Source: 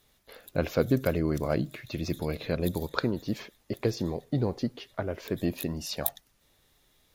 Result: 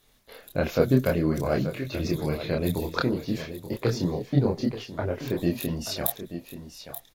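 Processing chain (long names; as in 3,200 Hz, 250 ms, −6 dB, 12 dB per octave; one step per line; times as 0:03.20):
single-tap delay 881 ms −11.5 dB
multi-voice chorus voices 6, 0.95 Hz, delay 27 ms, depth 4.6 ms
level +6 dB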